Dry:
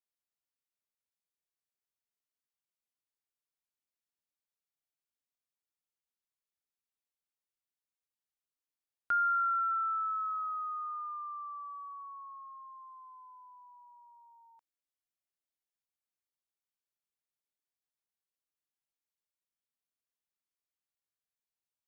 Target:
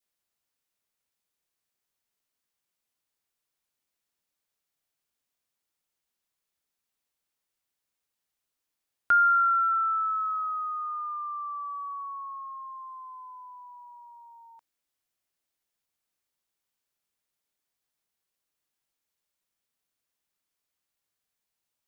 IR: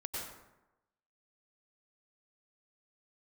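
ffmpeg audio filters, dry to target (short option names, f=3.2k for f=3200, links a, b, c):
-af "adynamicequalizer=threshold=0.00708:dfrequency=1000:dqfactor=1.2:tfrequency=1000:tqfactor=1.2:attack=5:release=100:ratio=0.375:range=2.5:mode=cutabove:tftype=bell,volume=9dB"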